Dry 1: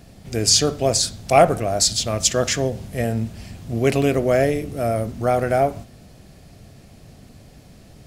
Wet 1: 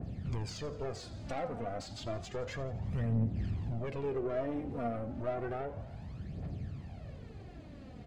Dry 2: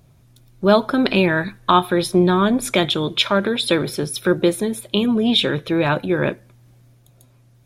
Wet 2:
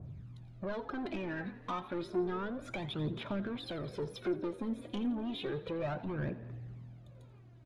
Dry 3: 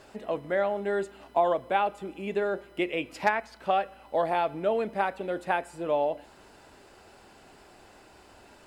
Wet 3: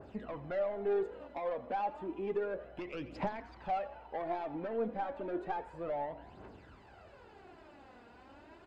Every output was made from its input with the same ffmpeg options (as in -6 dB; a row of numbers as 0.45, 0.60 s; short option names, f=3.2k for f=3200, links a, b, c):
-filter_complex "[0:a]highpass=67,lowshelf=f=120:g=8,bandreject=f=5.5k:w=13,acompressor=threshold=-27dB:ratio=5,asoftclip=type=tanh:threshold=-28.5dB,aphaser=in_gain=1:out_gain=1:delay=4.3:decay=0.61:speed=0.31:type=triangular,adynamicsmooth=sensitivity=1:basefreq=3.2k,asplit=7[a][b][c][d][e][f][g];[b]adelay=85,afreqshift=42,volume=-17dB[h];[c]adelay=170,afreqshift=84,volume=-21.2dB[i];[d]adelay=255,afreqshift=126,volume=-25.3dB[j];[e]adelay=340,afreqshift=168,volume=-29.5dB[k];[f]adelay=425,afreqshift=210,volume=-33.6dB[l];[g]adelay=510,afreqshift=252,volume=-37.8dB[m];[a][h][i][j][k][l][m]amix=inputs=7:normalize=0,adynamicequalizer=threshold=0.00398:dfrequency=1600:dqfactor=0.7:tfrequency=1600:tqfactor=0.7:attack=5:release=100:ratio=0.375:range=2.5:mode=cutabove:tftype=highshelf,volume=-4dB"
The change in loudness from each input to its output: -18.5, -20.0, -9.0 LU